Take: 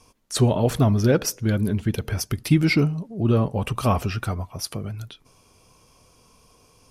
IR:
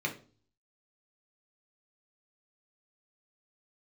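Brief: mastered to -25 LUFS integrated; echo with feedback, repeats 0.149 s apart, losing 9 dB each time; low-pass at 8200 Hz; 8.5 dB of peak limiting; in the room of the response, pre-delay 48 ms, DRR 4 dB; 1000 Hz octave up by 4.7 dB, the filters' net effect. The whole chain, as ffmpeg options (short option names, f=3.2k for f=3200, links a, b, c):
-filter_complex "[0:a]lowpass=8.2k,equalizer=f=1k:t=o:g=6,alimiter=limit=-14.5dB:level=0:latency=1,aecho=1:1:149|298|447|596:0.355|0.124|0.0435|0.0152,asplit=2[a][b];[1:a]atrim=start_sample=2205,adelay=48[c];[b][c]afir=irnorm=-1:irlink=0,volume=-10dB[d];[a][d]amix=inputs=2:normalize=0,volume=-2dB"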